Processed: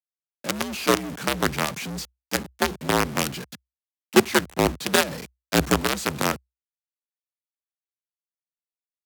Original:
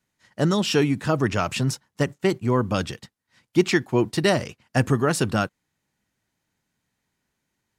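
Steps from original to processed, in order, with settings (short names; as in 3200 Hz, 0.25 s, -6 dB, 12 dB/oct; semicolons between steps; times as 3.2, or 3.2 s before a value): companded quantiser 2-bit; varispeed -14%; frequency shift +62 Hz; gain -6.5 dB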